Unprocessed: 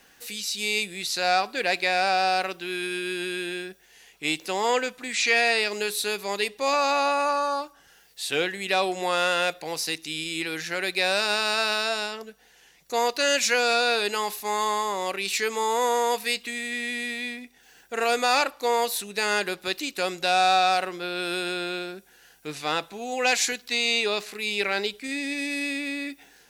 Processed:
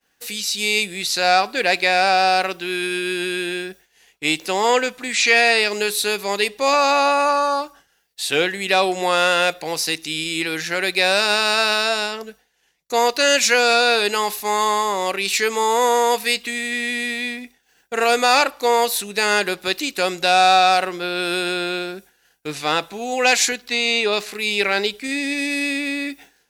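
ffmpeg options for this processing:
ffmpeg -i in.wav -filter_complex "[0:a]asettb=1/sr,asplit=3[link_01][link_02][link_03];[link_01]atrim=end=23.494[link_04];[link_02]atrim=start=23.49:end=24.13,asetpts=PTS-STARTPTS,afade=type=in:duration=0.004:curve=qsin,afade=type=out:start_time=0.636:duration=0.004:curve=qsin,highshelf=frequency=3700:gain=-6[link_05];[link_03]atrim=start=24.126[link_06];[link_04][link_05]acrossfade=duration=0.004:curve1=hsin:curve2=qsin[link_07];[link_07][link_06]acrossfade=duration=0.004:curve1=qsin:curve2=hsin,agate=range=-33dB:threshold=-45dB:ratio=3:detection=peak,volume=6.5dB" out.wav

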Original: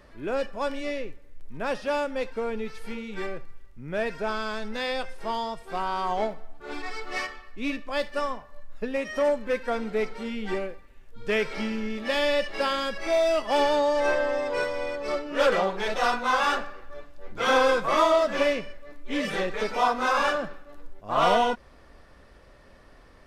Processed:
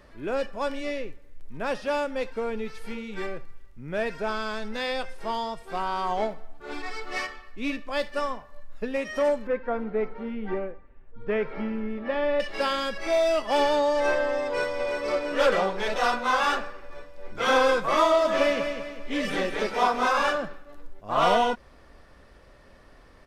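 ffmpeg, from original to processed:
ffmpeg -i in.wav -filter_complex "[0:a]asettb=1/sr,asplit=3[link_01][link_02][link_03];[link_01]atrim=end=9.474[link_04];[link_02]atrim=start=9.47:end=12.4,asetpts=PTS-STARTPTS,afade=type=in:duration=0.004:curve=qsin,afade=type=out:start_time=2.926:duration=0.004:curve=qsin,lowpass=1500[link_05];[link_03]atrim=start=12.396[link_06];[link_04][link_05]acrossfade=duration=0.004:curve1=hsin:curve2=qsin[link_07];[link_07][link_06]acrossfade=duration=0.004:curve1=qsin:curve2=hsin,asplit=2[link_08][link_09];[link_09]afade=type=in:start_time=14.45:duration=0.01,afade=type=out:start_time=14.93:duration=0.01,aecho=0:1:340|680|1020|1360|1700|2040|2380|2720|3060|3400|3740|4080:0.595662|0.416964|0.291874|0.204312|0.143018|0.100113|0.0700791|0.0490553|0.0343387|0.0240371|0.016826|0.0117782[link_10];[link_08][link_10]amix=inputs=2:normalize=0,asettb=1/sr,asplit=3[link_11][link_12][link_13];[link_11]atrim=end=18.054[link_14];[link_12]atrim=start=18.05:end=20.08,asetpts=PTS-STARTPTS,afade=type=in:duration=0.004:curve=qsin,afade=type=out:start_time=2.026:duration=0.004:curve=qsin,aecho=1:1:198|396|594|792|990:0.447|0.188|0.0788|0.0331|0.0139,atrim=end_sample=89523[link_15];[link_13]atrim=start=20.076[link_16];[link_14][link_15]acrossfade=duration=0.004:curve1=hsin:curve2=qsin[link_17];[link_17][link_16]acrossfade=duration=0.004:curve1=qsin:curve2=hsin" out.wav

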